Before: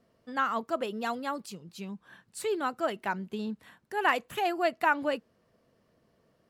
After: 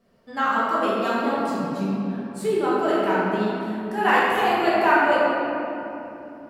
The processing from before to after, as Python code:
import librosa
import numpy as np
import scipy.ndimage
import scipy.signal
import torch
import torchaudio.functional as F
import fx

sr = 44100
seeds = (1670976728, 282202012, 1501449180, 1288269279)

y = fx.tilt_shelf(x, sr, db=4.5, hz=690.0, at=(1.1, 2.83))
y = fx.room_shoebox(y, sr, seeds[0], volume_m3=150.0, walls='hard', distance_m=1.2)